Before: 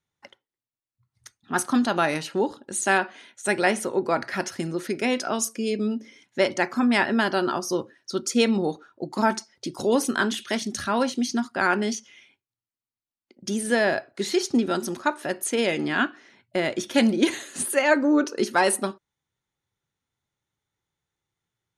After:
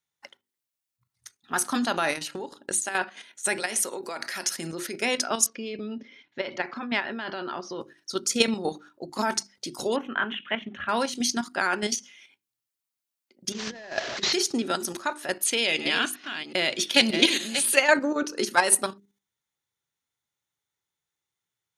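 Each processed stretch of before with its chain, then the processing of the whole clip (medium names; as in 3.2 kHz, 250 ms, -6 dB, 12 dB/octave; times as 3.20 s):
2.15–2.95 s: hum notches 50/100/150/200/250 Hz + compression 4:1, threshold -30 dBFS + transient shaper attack +10 dB, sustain -3 dB
3.60–4.57 s: treble shelf 3.4 kHz +10.5 dB + compression 4:1, threshold -26 dBFS + high-pass 200 Hz
5.46–7.81 s: low-pass 3.9 kHz 24 dB/octave + compression 12:1, threshold -22 dBFS
9.96–10.89 s: elliptic low-pass 3 kHz + peaking EQ 370 Hz -5.5 dB 0.65 oct
13.52–14.33 s: one-bit delta coder 32 kbps, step -31 dBFS + compressor with a negative ratio -29 dBFS, ratio -0.5
15.41–17.81 s: chunks repeated in reverse 374 ms, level -9.5 dB + high-order bell 3.4 kHz +8 dB 1.3 oct
whole clip: tilt EQ +2 dB/octave; hum notches 50/100/150/200/250/300/350/400 Hz; level held to a coarse grid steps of 9 dB; trim +2.5 dB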